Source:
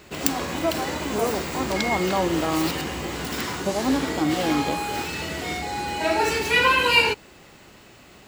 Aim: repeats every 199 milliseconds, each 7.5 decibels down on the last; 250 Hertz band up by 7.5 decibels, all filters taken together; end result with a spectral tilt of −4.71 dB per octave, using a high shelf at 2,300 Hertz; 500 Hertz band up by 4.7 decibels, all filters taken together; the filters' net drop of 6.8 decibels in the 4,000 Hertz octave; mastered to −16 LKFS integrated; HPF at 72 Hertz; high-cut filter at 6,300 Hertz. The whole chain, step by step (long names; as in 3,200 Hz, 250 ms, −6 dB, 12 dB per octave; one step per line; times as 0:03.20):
high-pass filter 72 Hz
low-pass filter 6,300 Hz
parametric band 250 Hz +8.5 dB
parametric band 500 Hz +3.5 dB
high-shelf EQ 2,300 Hz −4 dB
parametric band 4,000 Hz −6 dB
repeating echo 199 ms, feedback 42%, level −7.5 dB
level +4 dB